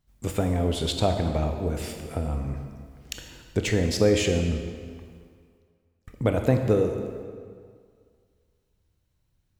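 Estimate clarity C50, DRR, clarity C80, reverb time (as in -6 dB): 6.0 dB, 4.5 dB, 7.0 dB, 2.0 s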